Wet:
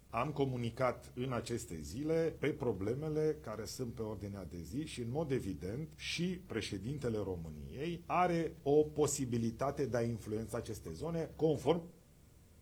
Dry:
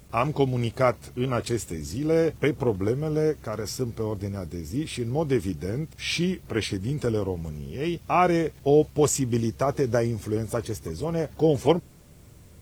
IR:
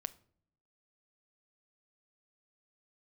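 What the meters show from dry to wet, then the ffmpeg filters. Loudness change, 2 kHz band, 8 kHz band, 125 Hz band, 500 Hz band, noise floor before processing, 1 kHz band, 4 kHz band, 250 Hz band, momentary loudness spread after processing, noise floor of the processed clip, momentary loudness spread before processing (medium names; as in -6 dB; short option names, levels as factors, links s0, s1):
-11.5 dB, -12.0 dB, -12.0 dB, -12.5 dB, -11.5 dB, -50 dBFS, -11.5 dB, -12.0 dB, -11.5 dB, 10 LU, -61 dBFS, 10 LU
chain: -filter_complex "[1:a]atrim=start_sample=2205,asetrate=70560,aresample=44100[s0];[0:a][s0]afir=irnorm=-1:irlink=0,volume=0.531"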